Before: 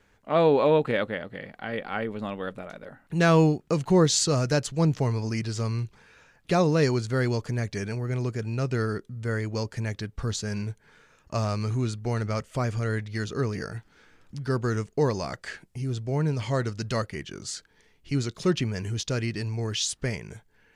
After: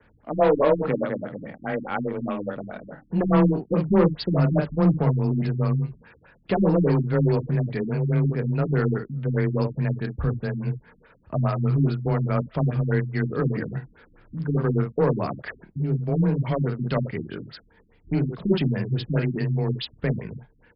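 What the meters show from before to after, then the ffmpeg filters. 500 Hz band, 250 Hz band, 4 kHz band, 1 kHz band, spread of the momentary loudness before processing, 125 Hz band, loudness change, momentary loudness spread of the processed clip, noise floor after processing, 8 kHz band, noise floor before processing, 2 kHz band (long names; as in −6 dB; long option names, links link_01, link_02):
+1.5 dB, +4.5 dB, can't be measured, +1.0 dB, 15 LU, +4.5 dB, +3.0 dB, 12 LU, −59 dBFS, below −40 dB, −63 dBFS, −2.0 dB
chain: -filter_complex "[0:a]acrossover=split=2300[link_01][link_02];[link_01]acontrast=80[link_03];[link_03][link_02]amix=inputs=2:normalize=0,afreqshift=19,asoftclip=type=tanh:threshold=-12dB,asplit=2[link_04][link_05];[link_05]aecho=0:1:29|55:0.376|0.447[link_06];[link_04][link_06]amix=inputs=2:normalize=0,afftfilt=real='re*lt(b*sr/1024,300*pow(5400/300,0.5+0.5*sin(2*PI*4.8*pts/sr)))':imag='im*lt(b*sr/1024,300*pow(5400/300,0.5+0.5*sin(2*PI*4.8*pts/sr)))':win_size=1024:overlap=0.75,volume=-2dB"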